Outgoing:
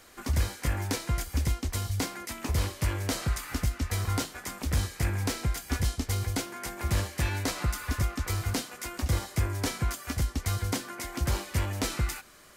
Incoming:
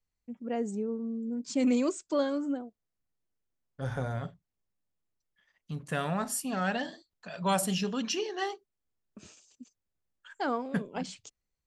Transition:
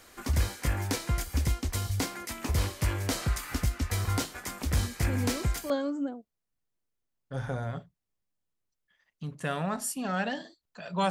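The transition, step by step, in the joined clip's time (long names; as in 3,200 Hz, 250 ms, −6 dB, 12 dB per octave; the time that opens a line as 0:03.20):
outgoing
0:04.80: mix in incoming from 0:01.28 0.90 s −9 dB
0:05.70: continue with incoming from 0:02.18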